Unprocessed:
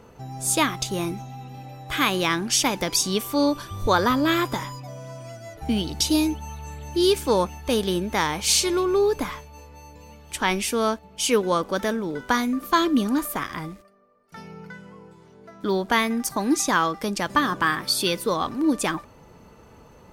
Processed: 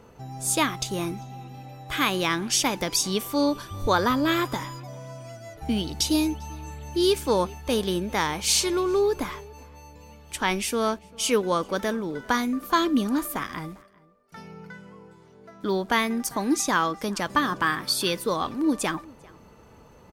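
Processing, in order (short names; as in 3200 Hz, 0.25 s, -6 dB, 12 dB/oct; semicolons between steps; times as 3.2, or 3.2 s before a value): outdoor echo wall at 68 m, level -24 dB; gain -2 dB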